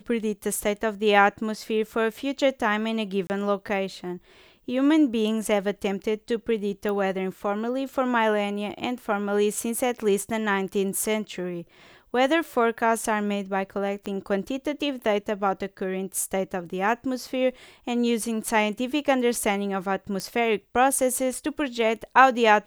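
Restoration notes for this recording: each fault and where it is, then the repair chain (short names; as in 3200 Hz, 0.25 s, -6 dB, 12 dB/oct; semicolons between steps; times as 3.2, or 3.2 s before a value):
3.27–3.3 gap 29 ms
6.89 pop -18 dBFS
14.06 pop -18 dBFS
20.2 pop -16 dBFS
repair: de-click; interpolate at 3.27, 29 ms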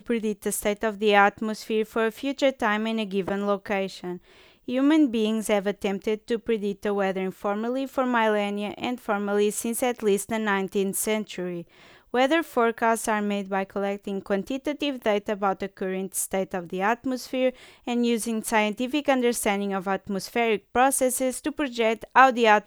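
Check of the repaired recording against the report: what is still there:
none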